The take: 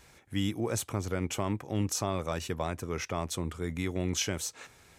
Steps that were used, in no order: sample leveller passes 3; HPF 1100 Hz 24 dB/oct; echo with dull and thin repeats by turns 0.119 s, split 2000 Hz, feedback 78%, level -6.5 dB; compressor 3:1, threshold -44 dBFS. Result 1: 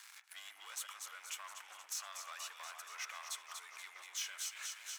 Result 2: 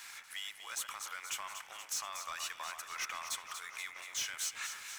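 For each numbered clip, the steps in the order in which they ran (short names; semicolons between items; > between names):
echo with dull and thin repeats by turns > sample leveller > compressor > HPF; compressor > HPF > sample leveller > echo with dull and thin repeats by turns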